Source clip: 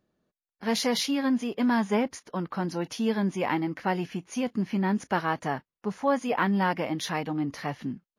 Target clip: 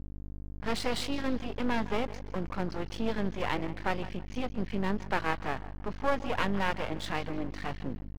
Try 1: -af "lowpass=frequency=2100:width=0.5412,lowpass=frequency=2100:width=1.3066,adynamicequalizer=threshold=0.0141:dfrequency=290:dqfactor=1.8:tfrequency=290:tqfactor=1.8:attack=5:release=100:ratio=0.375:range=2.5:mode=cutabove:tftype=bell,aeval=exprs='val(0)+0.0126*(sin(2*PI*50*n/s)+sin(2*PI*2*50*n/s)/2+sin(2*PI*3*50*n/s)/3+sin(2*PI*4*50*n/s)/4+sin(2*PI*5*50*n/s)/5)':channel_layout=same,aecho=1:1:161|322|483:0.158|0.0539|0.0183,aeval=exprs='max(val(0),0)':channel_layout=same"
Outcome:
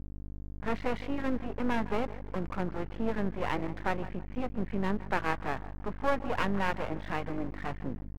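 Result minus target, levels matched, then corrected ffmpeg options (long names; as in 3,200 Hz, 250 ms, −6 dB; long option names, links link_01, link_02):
4,000 Hz band −6.5 dB
-af "lowpass=frequency=4600:width=0.5412,lowpass=frequency=4600:width=1.3066,adynamicequalizer=threshold=0.0141:dfrequency=290:dqfactor=1.8:tfrequency=290:tqfactor=1.8:attack=5:release=100:ratio=0.375:range=2.5:mode=cutabove:tftype=bell,aeval=exprs='val(0)+0.0126*(sin(2*PI*50*n/s)+sin(2*PI*2*50*n/s)/2+sin(2*PI*3*50*n/s)/3+sin(2*PI*4*50*n/s)/4+sin(2*PI*5*50*n/s)/5)':channel_layout=same,aecho=1:1:161|322|483:0.158|0.0539|0.0183,aeval=exprs='max(val(0),0)':channel_layout=same"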